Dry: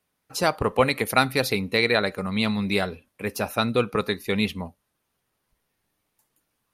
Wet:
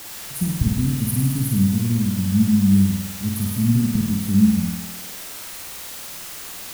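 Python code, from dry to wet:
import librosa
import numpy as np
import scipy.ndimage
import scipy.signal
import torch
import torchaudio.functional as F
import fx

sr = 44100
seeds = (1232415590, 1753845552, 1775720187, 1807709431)

y = scipy.signal.sosfilt(scipy.signal.ellip(3, 1.0, 40, [220.0, 9600.0], 'bandstop', fs=sr, output='sos'), x)
y = fx.low_shelf(y, sr, hz=270.0, db=7.5)
y = fx.dmg_noise_colour(y, sr, seeds[0], colour='white', level_db=-42.0)
y = fx.room_flutter(y, sr, wall_m=8.8, rt60_s=0.91)
y = F.gain(torch.from_numpy(y), 4.5).numpy()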